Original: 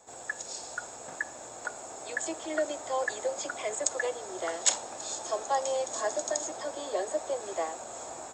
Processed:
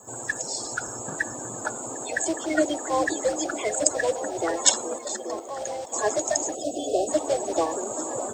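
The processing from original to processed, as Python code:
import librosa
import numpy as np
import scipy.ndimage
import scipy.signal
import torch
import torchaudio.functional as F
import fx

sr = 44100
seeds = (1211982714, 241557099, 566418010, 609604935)

p1 = fx.spec_quant(x, sr, step_db=30)
p2 = fx.rider(p1, sr, range_db=3, speed_s=2.0)
p3 = p1 + (p2 * librosa.db_to_amplitude(2.5))
p4 = scipy.signal.sosfilt(scipy.signal.butter(2, 49.0, 'highpass', fs=sr, output='sos'), p3)
p5 = fx.low_shelf(p4, sr, hz=350.0, db=11.0)
p6 = fx.level_steps(p5, sr, step_db=15, at=(4.98, 5.94))
p7 = fx.quant_dither(p6, sr, seeds[0], bits=12, dither='triangular')
p8 = p7 + fx.echo_stepped(p7, sr, ms=415, hz=220.0, octaves=0.7, feedback_pct=70, wet_db=-3.5, dry=0)
p9 = fx.spec_box(p8, sr, start_s=6.54, length_s=0.55, low_hz=780.0, high_hz=2500.0, gain_db=-29)
p10 = fx.high_shelf(p9, sr, hz=7400.0, db=7.5)
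y = p10 * librosa.db_to_amplitude(-3.0)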